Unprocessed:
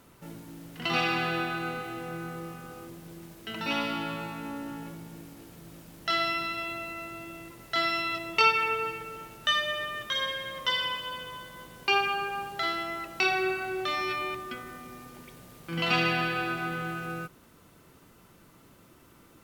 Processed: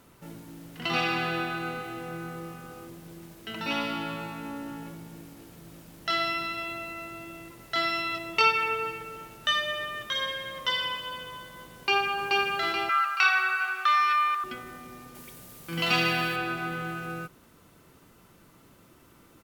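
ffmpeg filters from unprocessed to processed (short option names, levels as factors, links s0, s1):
-filter_complex "[0:a]asplit=2[s0][s1];[s1]afade=t=in:st=11.74:d=0.01,afade=t=out:st=12.29:d=0.01,aecho=0:1:430|860|1290|1720|2150|2580:0.891251|0.401063|0.180478|0.0812152|0.0365469|0.0164461[s2];[s0][s2]amix=inputs=2:normalize=0,asettb=1/sr,asplit=3[s3][s4][s5];[s3]atrim=end=12.894[s6];[s4]atrim=start=12.89:end=14.44,asetpts=PTS-STARTPTS,afade=t=in:d=0.004:c=qsin,afade=t=out:st=1.546:d=0.004:c=qsin,highpass=f=1300:t=q:w=5.1[s7];[s5]atrim=start=14.436[s8];[s6][s7]acrossfade=d=0.004:c1=hsin:c2=qsin[s9];[s9][s8]acrossfade=d=0.004:c1=qsin:c2=hsin,asettb=1/sr,asplit=3[s10][s11][s12];[s10]atrim=end=15.154[s13];[s11]atrim=start=15.15:end=16.36,asetpts=PTS-STARTPTS,afade=t=in:d=0.004:c=qsin,afade=t=out:st=1.206:d=0.004:c=qsin,aemphasis=mode=production:type=cd[s14];[s12]atrim=start=16.356[s15];[s13][s14]acrossfade=d=0.004:c1=hsin:c2=qsin[s16];[s16][s15]acrossfade=d=0.004:c1=qsin:c2=hsin"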